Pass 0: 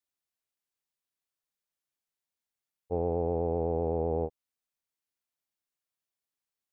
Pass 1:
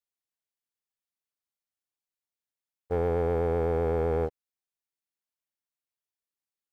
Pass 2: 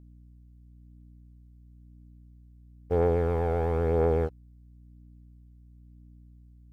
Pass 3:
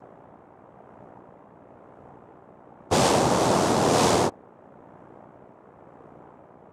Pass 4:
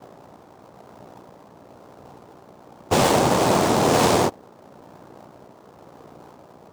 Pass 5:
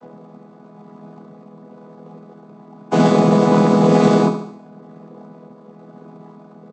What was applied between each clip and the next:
waveshaping leveller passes 2; trim -1.5 dB
hum 60 Hz, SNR 22 dB; phaser 0.99 Hz, delay 1.5 ms, feedback 36%
median filter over 41 samples; wavefolder -24 dBFS; noise-vocoded speech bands 2; trim +9 dB
dead-time distortion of 0.11 ms; trim +3 dB
vocoder on a held chord major triad, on E3; on a send: feedback delay 72 ms, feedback 50%, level -9 dB; on the sum: trim +5.5 dB

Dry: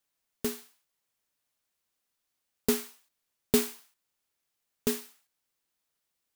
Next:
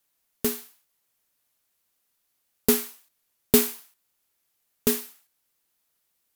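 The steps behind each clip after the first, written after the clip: peaking EQ 13 kHz +7 dB 0.63 oct; trim +5 dB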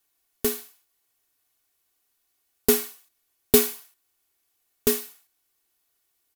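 comb 2.7 ms, depth 54%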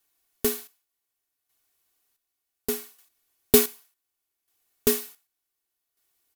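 square tremolo 0.67 Hz, depth 65%, duty 45%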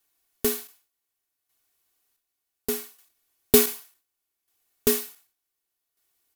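decay stretcher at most 140 dB/s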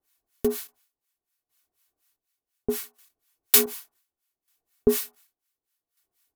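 harmonic tremolo 4.1 Hz, depth 100%, crossover 890 Hz; trim +4 dB

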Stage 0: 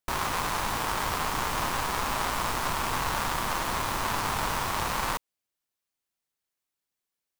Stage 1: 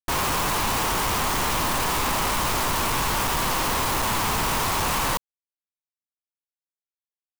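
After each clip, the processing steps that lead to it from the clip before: companded quantiser 2-bit; trim +2.5 dB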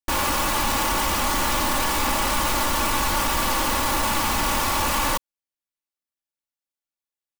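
comb 3.5 ms, depth 59%

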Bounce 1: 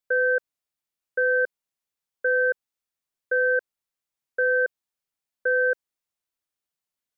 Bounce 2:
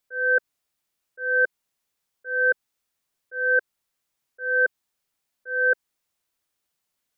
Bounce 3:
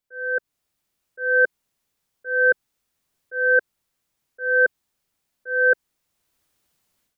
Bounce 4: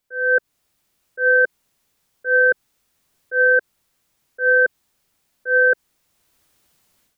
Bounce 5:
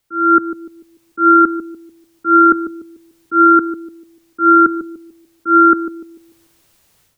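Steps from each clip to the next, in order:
dynamic bell 520 Hz, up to -6 dB, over -37 dBFS, Q 2.9; slow attack 366 ms; trim +8.5 dB
bass shelf 360 Hz +7 dB; level rider gain up to 15 dB; trim -7 dB
peak limiter -16.5 dBFS, peak gain reduction 8.5 dB; trim +8 dB
bucket-brigade echo 147 ms, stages 1024, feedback 36%, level -9 dB; frequency shift -170 Hz; trim +6.5 dB

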